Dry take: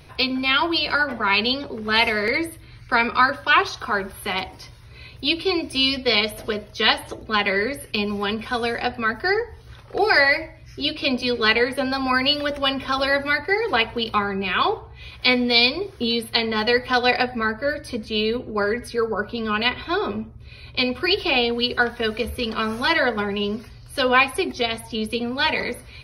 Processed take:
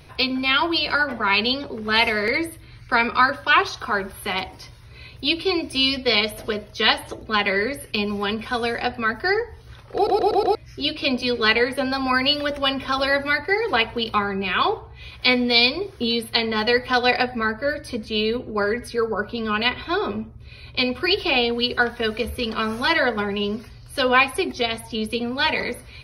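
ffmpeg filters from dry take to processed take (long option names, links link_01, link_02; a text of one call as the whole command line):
ffmpeg -i in.wav -filter_complex "[0:a]asplit=6[link_01][link_02][link_03][link_04][link_05][link_06];[link_01]atrim=end=10.072[link_07];[link_02]atrim=start=9.948:end=10.072[link_08];[link_03]atrim=start=9.948:end=10.072[link_09];[link_04]atrim=start=9.948:end=10.072[link_10];[link_05]atrim=start=9.948:end=10.072[link_11];[link_06]atrim=start=10.548[link_12];[link_07][link_08]acrossfade=duration=0.004:curve1=hsin:curve2=hsin[link_13];[link_13][link_09]acrossfade=duration=0.004:curve1=hsin:curve2=hsin[link_14];[link_14][link_10]acrossfade=duration=0.004:curve1=hsin:curve2=hsin[link_15];[link_15][link_11]acrossfade=duration=0.004:curve1=hsin:curve2=hsin[link_16];[link_16][link_12]acrossfade=duration=0.004:curve1=hsin:curve2=hsin" out.wav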